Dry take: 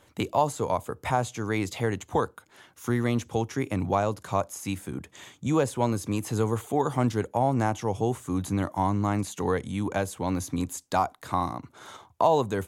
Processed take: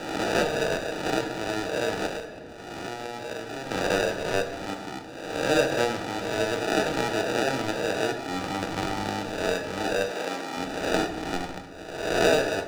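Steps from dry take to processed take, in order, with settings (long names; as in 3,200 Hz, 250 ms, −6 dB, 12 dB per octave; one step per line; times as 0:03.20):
peak hold with a rise ahead of every peak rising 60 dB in 1.12 s
decimation without filtering 41×
three-way crossover with the lows and the highs turned down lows −14 dB, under 340 Hz, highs −14 dB, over 7,700 Hz
rectangular room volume 320 cubic metres, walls mixed, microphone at 0.61 metres
0:02.06–0:03.71: downward compressor 6 to 1, threshold −31 dBFS, peak gain reduction 12 dB
0:10.11–0:10.57: high-pass filter 250 Hz 12 dB per octave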